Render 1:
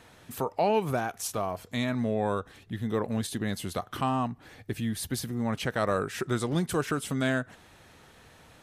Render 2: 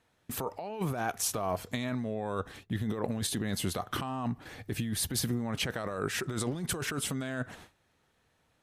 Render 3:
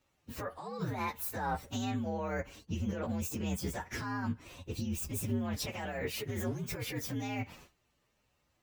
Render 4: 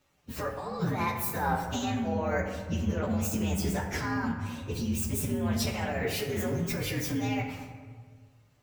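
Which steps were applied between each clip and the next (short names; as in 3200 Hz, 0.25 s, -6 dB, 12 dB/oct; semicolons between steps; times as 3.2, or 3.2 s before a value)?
gate with hold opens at -41 dBFS; negative-ratio compressor -33 dBFS, ratio -1
inharmonic rescaling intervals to 122%
reverb RT60 1.6 s, pre-delay 5 ms, DRR 3 dB; gain +4.5 dB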